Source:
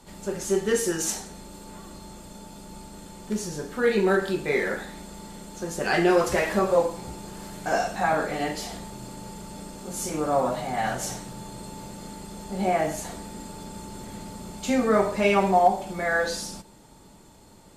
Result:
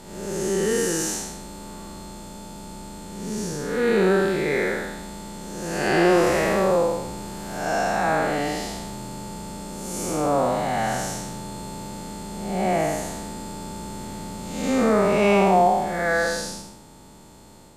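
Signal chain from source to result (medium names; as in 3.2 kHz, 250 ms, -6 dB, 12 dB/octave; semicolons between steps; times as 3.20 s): spectral blur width 254 ms; trim +6 dB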